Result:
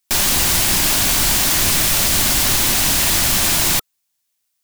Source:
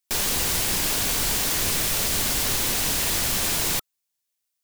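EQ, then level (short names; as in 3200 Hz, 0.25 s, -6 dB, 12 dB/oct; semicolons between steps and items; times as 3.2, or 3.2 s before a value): bell 460 Hz -13.5 dB 0.21 oct; +8.0 dB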